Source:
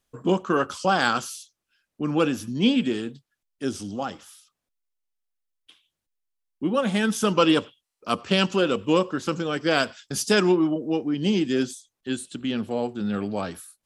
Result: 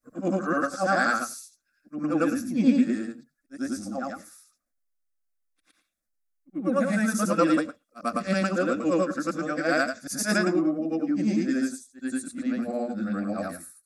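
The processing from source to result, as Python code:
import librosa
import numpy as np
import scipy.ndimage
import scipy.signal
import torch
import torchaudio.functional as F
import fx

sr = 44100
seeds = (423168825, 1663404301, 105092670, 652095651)

y = fx.frame_reverse(x, sr, frame_ms=228.0)
y = fx.fixed_phaser(y, sr, hz=620.0, stages=8)
y = y * 10.0 ** (4.0 / 20.0)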